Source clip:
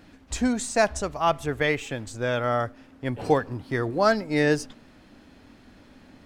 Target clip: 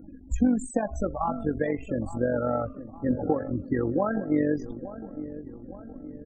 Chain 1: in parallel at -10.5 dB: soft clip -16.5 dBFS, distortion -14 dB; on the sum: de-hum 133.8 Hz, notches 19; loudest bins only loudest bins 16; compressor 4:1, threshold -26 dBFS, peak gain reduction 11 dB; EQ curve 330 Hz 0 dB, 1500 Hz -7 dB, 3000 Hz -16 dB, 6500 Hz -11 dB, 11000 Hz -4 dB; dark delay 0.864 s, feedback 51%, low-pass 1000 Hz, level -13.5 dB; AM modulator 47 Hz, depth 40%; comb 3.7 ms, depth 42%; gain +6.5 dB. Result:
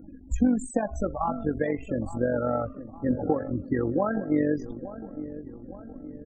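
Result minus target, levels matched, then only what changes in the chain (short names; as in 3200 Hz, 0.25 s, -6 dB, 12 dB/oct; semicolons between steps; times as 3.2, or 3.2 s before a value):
soft clip: distortion -7 dB
change: soft clip -24 dBFS, distortion -7 dB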